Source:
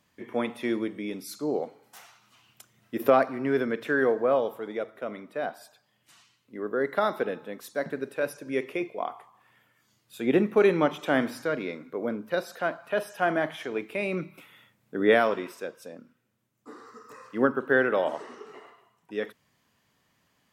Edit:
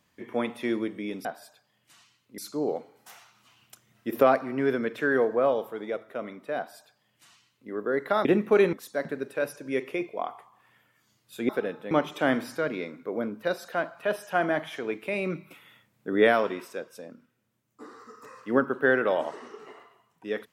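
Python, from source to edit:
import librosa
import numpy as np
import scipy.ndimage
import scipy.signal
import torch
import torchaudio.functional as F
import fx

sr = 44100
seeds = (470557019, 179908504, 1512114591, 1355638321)

y = fx.edit(x, sr, fx.duplicate(start_s=5.44, length_s=1.13, to_s=1.25),
    fx.swap(start_s=7.12, length_s=0.42, other_s=10.3, other_length_s=0.48), tone=tone)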